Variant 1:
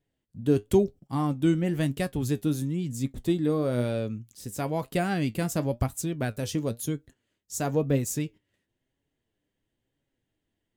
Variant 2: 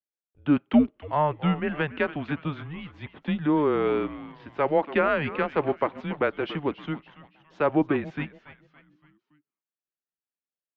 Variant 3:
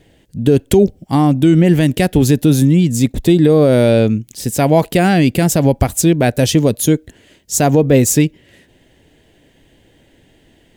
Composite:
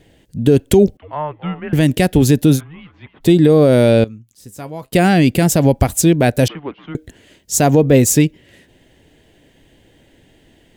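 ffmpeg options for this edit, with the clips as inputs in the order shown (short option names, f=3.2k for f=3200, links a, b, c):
-filter_complex "[1:a]asplit=3[a][b][c];[2:a]asplit=5[d][e][f][g][h];[d]atrim=end=0.972[i];[a]atrim=start=0.968:end=1.732[j];[e]atrim=start=1.728:end=2.61[k];[b]atrim=start=2.55:end=3.26[l];[f]atrim=start=3.2:end=4.042[m];[0:a]atrim=start=4.038:end=4.932[n];[g]atrim=start=4.928:end=6.482[o];[c]atrim=start=6.478:end=6.952[p];[h]atrim=start=6.948[q];[i][j]acrossfade=d=0.004:c1=hsin:c2=hsin[r];[r][k]acrossfade=d=0.004:c1=hsin:c2=hsin[s];[s][l]acrossfade=d=0.06:c1=tri:c2=tri[t];[t][m]acrossfade=d=0.06:c1=tri:c2=tri[u];[u][n]acrossfade=d=0.004:c1=hsin:c2=hsin[v];[v][o]acrossfade=d=0.004:c1=hsin:c2=hsin[w];[w][p]acrossfade=d=0.004:c1=hsin:c2=hsin[x];[x][q]acrossfade=d=0.004:c1=hsin:c2=hsin"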